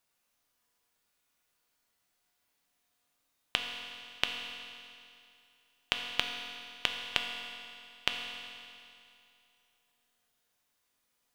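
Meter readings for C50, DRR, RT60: 4.0 dB, 2.5 dB, 2.5 s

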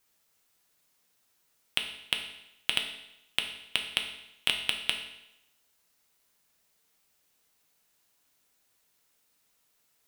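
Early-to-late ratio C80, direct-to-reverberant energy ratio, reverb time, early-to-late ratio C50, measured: 10.0 dB, 3.0 dB, 0.85 s, 7.5 dB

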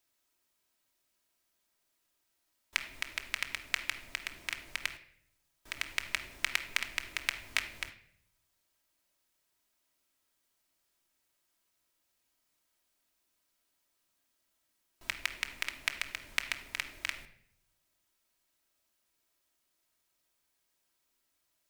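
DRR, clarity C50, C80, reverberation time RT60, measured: 3.5 dB, 11.5 dB, 14.5 dB, 0.65 s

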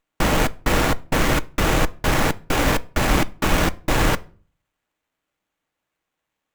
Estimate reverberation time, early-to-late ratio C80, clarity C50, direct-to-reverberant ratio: 0.40 s, 29.0 dB, 23.5 dB, 11.5 dB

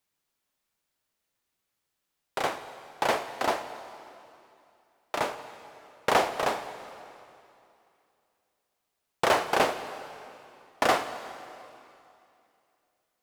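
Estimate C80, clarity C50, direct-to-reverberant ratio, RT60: 11.5 dB, 10.5 dB, 10.0 dB, 2.6 s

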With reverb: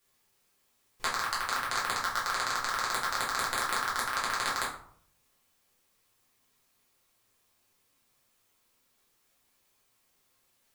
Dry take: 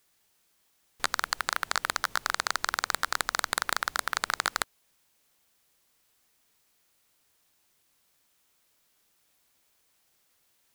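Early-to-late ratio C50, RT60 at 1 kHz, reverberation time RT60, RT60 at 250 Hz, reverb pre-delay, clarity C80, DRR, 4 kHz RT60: 6.0 dB, 0.60 s, 0.60 s, 0.80 s, 6 ms, 10.0 dB, −7.0 dB, 0.35 s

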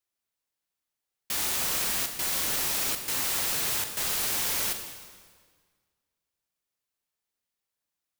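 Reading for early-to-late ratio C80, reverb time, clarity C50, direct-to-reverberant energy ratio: 8.5 dB, 1.7 s, 7.0 dB, 5.5 dB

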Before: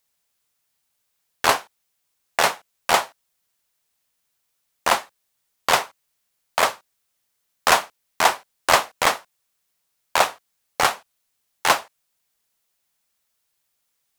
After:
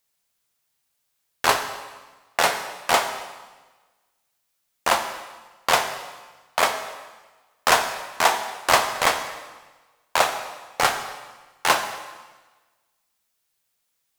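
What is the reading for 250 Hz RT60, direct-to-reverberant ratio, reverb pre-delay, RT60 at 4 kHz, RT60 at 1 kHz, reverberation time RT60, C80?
1.3 s, 6.0 dB, 4 ms, 1.2 s, 1.3 s, 1.3 s, 10.0 dB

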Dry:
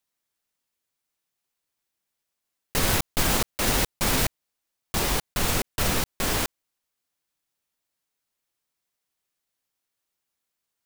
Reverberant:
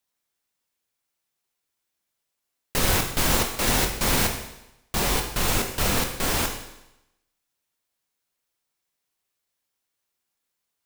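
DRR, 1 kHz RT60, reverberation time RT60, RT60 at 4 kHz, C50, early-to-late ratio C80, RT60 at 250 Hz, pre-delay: 3.0 dB, 0.90 s, 0.90 s, 0.90 s, 7.0 dB, 9.5 dB, 0.85 s, 18 ms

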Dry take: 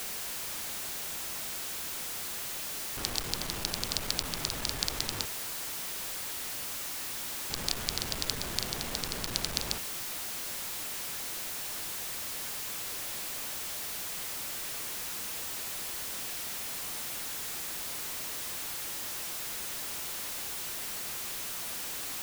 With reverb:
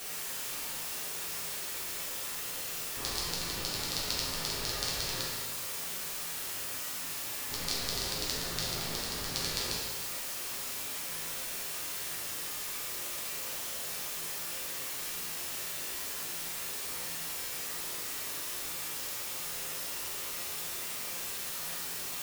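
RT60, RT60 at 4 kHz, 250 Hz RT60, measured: 1.1 s, 1.1 s, 1.0 s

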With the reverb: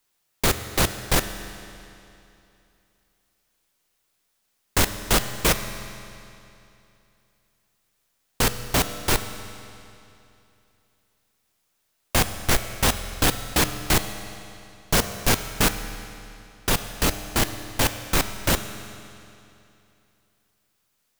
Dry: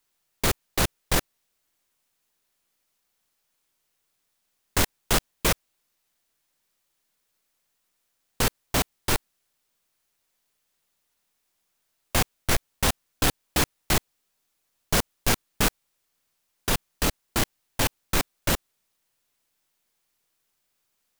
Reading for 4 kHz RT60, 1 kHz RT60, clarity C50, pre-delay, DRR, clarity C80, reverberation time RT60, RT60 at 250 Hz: 2.6 s, 2.8 s, 10.0 dB, 10 ms, 9.0 dB, 11.0 dB, 2.8 s, 2.8 s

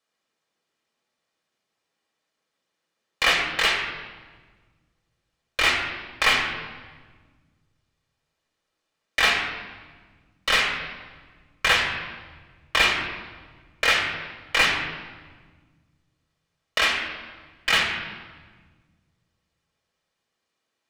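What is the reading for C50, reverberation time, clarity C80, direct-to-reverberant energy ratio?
4.5 dB, 1.4 s, 6.0 dB, −0.5 dB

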